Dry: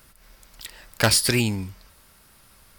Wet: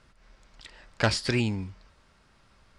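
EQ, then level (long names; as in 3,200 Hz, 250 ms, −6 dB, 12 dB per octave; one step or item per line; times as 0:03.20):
low-pass filter 7,700 Hz 24 dB per octave
high-shelf EQ 4,300 Hz −10 dB
−3.5 dB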